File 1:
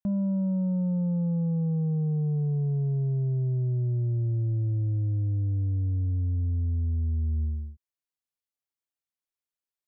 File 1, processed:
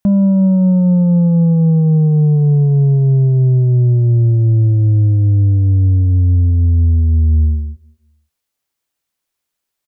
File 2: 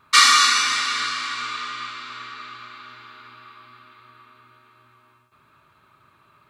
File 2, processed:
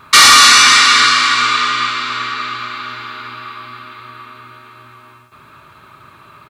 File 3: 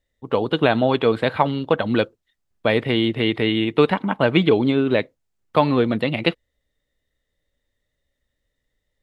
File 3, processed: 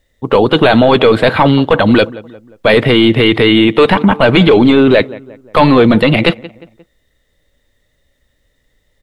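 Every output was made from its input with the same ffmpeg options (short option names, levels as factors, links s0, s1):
-filter_complex "[0:a]asplit=2[s0][s1];[s1]adelay=177,lowpass=f=2000:p=1,volume=0.0631,asplit=2[s2][s3];[s3]adelay=177,lowpass=f=2000:p=1,volume=0.46,asplit=2[s4][s5];[s5]adelay=177,lowpass=f=2000:p=1,volume=0.46[s6];[s0][s2][s4][s6]amix=inputs=4:normalize=0,apsyclip=7.5,volume=0.794"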